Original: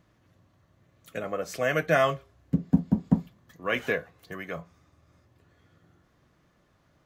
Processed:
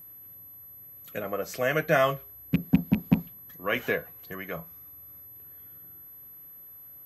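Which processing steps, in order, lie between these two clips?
rattle on loud lows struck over -23 dBFS, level -22 dBFS; whistle 12 kHz -45 dBFS

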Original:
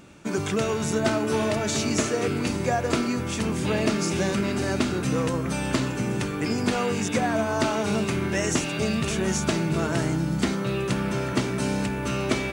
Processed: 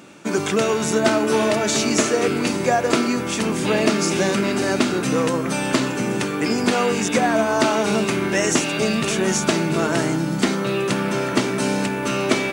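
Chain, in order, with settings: high-pass 200 Hz 12 dB/octave; trim +6.5 dB

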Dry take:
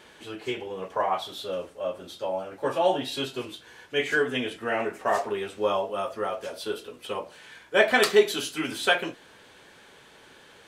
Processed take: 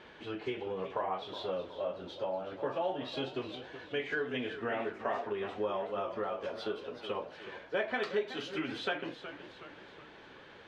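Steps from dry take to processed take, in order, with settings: compression 3:1, threshold -33 dBFS, peak gain reduction 15 dB; distance through air 220 m; modulated delay 372 ms, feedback 51%, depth 117 cents, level -12 dB

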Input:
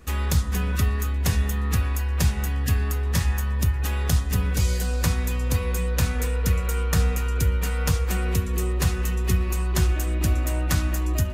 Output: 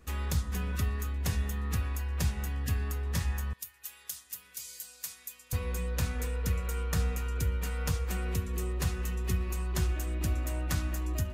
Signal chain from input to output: 3.53–5.53 s: differentiator; trim -8.5 dB

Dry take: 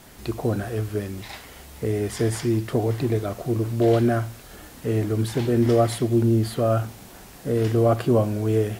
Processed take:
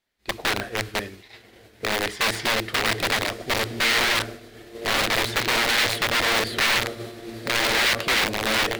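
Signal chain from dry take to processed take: self-modulated delay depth 0.089 ms; echo that smears into a reverb 1086 ms, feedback 61%, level -11 dB; spring tank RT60 1.3 s, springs 54 ms, chirp 60 ms, DRR 14 dB; expander -25 dBFS; integer overflow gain 18.5 dB; graphic EQ 125/500/2000/4000 Hz -6/+3/+9/+9 dB; trim -3.5 dB

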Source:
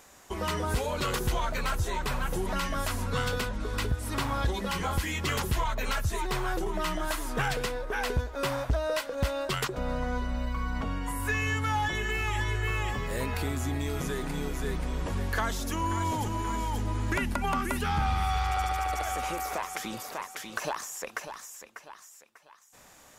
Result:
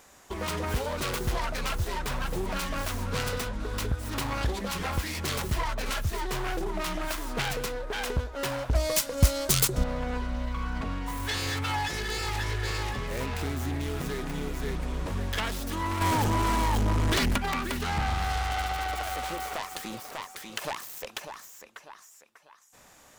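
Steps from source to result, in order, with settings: self-modulated delay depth 0.24 ms; 8.75–9.84 s: tone controls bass +10 dB, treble +14 dB; 16.01–17.38 s: waveshaping leveller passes 3

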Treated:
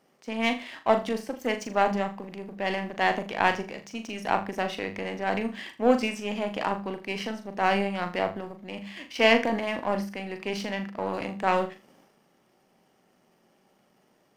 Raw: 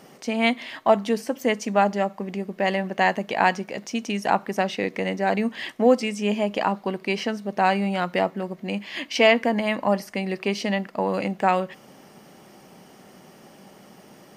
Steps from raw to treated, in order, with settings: power-law waveshaper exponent 1.4; tone controls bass -1 dB, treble -3 dB; hum notches 50/100/150/200 Hz; transient shaper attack -2 dB, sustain +7 dB; flutter echo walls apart 6.9 m, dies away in 0.29 s

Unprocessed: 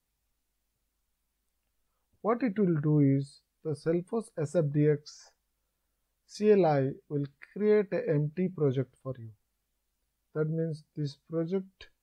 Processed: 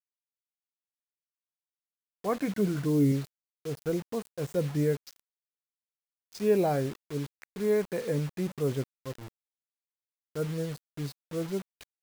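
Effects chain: 2.41–3.12 s: rippled EQ curve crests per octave 1.7, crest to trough 8 dB; bit crusher 7-bit; trim -1.5 dB

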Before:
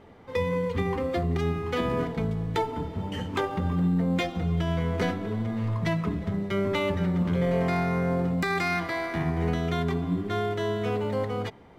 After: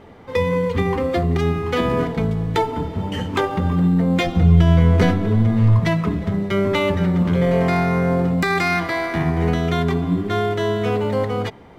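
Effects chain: 4.26–5.80 s: bass shelf 150 Hz +11.5 dB; trim +7.5 dB

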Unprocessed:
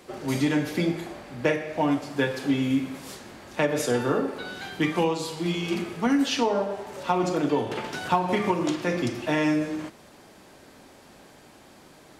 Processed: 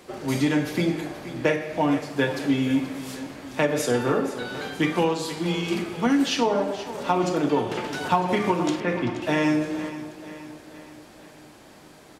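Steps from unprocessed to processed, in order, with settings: 8.80–9.22 s: Chebyshev low-pass 2.5 kHz, order 2; on a send: feedback delay 476 ms, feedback 53%, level -14 dB; on the sum: trim +1.5 dB

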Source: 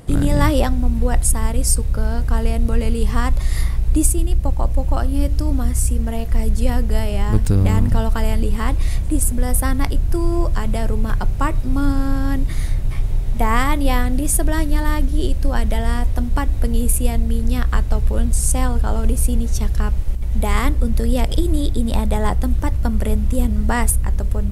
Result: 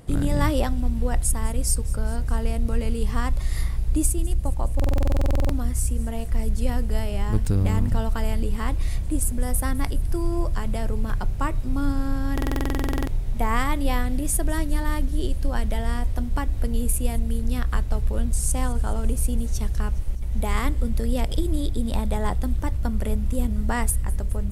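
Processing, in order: on a send: feedback echo behind a high-pass 207 ms, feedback 66%, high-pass 3.7 kHz, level -18 dB; on the sum: buffer glitch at 4.75/12.33 s, samples 2048, times 15; trim -6 dB

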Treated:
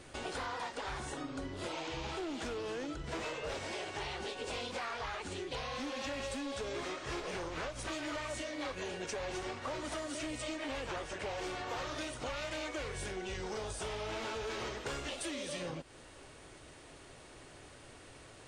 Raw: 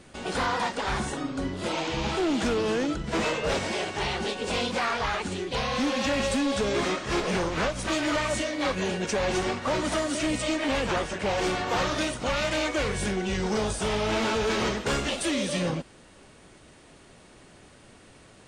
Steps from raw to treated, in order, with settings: peaking EQ 200 Hz -13 dB 0.39 oct; compression, threshold -37 dBFS, peak gain reduction 12.5 dB; trim -1 dB

